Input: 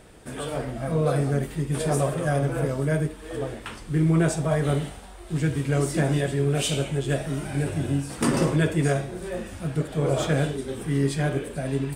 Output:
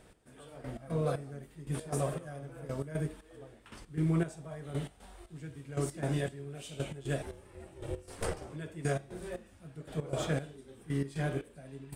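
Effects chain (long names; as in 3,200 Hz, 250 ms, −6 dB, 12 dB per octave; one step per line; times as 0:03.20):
gate pattern "x....x.x" 117 BPM −12 dB
0:07.22–0:08.50: ring modulation 230 Hz
level −8.5 dB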